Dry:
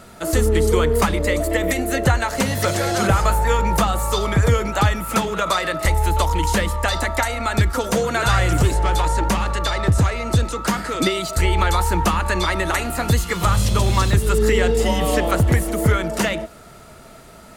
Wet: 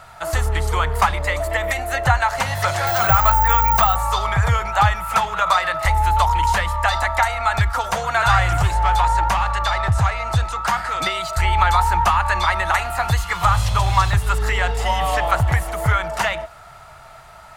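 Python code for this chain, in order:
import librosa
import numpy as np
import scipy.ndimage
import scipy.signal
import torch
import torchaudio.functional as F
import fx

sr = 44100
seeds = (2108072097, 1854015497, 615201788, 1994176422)

y = fx.resample_bad(x, sr, factor=2, down='none', up='zero_stuff', at=(2.87, 3.96))
y = fx.curve_eq(y, sr, hz=(130.0, 230.0, 470.0, 780.0, 9600.0), db=(0, -18, -11, 8, -5))
y = y * librosa.db_to_amplitude(-1.0)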